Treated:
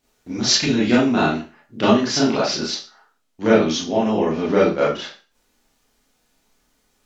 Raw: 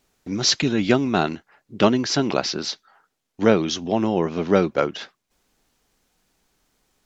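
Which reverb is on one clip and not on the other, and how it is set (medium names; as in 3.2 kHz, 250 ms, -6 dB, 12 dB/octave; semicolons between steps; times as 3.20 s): Schroeder reverb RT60 0.34 s, combs from 26 ms, DRR -7.5 dB; trim -5.5 dB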